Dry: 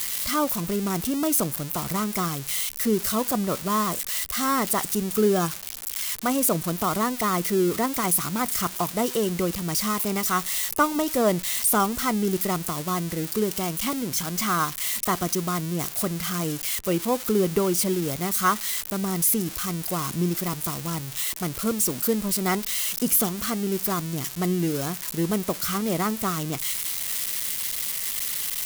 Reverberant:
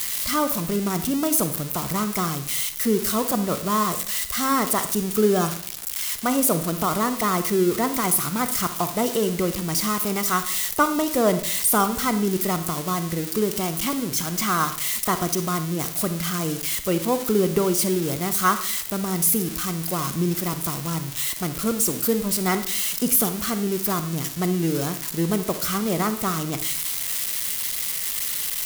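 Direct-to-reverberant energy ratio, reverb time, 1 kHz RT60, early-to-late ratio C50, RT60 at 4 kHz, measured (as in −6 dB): 10.0 dB, 0.55 s, 0.55 s, 11.5 dB, 0.50 s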